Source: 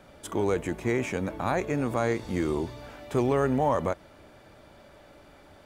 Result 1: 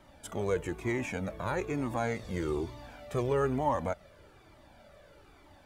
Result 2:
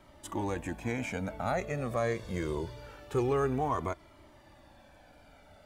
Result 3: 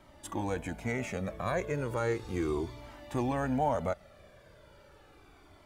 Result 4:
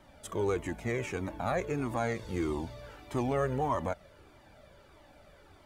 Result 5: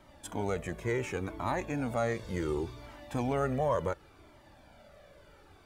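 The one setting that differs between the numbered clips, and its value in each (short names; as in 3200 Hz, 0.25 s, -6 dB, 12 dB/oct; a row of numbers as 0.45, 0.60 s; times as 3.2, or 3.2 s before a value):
cascading flanger, rate: 1.1, 0.24, 0.35, 1.6, 0.69 Hz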